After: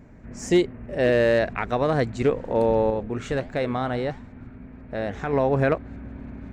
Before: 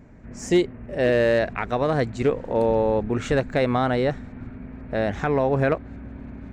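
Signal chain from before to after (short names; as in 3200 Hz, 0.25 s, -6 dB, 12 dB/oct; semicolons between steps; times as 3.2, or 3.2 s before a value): 2.9–5.33 flange 1.5 Hz, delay 8.4 ms, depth 9.4 ms, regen +84%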